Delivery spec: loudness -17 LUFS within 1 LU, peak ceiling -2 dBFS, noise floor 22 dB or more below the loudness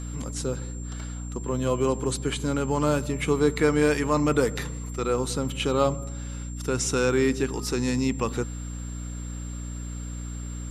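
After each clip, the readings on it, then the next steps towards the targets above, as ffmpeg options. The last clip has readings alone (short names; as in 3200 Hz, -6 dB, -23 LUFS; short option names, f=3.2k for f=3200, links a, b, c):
hum 60 Hz; harmonics up to 300 Hz; hum level -32 dBFS; steady tone 7400 Hz; tone level -44 dBFS; loudness -27.0 LUFS; peak -8.5 dBFS; loudness target -17.0 LUFS
-> -af "bandreject=f=60:t=h:w=6,bandreject=f=120:t=h:w=6,bandreject=f=180:t=h:w=6,bandreject=f=240:t=h:w=6,bandreject=f=300:t=h:w=6"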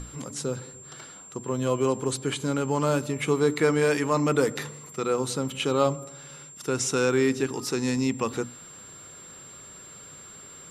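hum none; steady tone 7400 Hz; tone level -44 dBFS
-> -af "bandreject=f=7.4k:w=30"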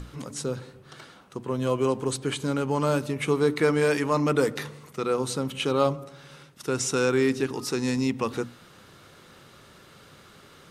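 steady tone none; loudness -26.5 LUFS; peak -9.0 dBFS; loudness target -17.0 LUFS
-> -af "volume=9.5dB,alimiter=limit=-2dB:level=0:latency=1"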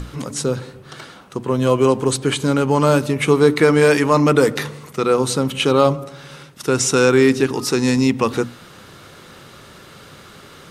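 loudness -17.0 LUFS; peak -2.0 dBFS; noise floor -43 dBFS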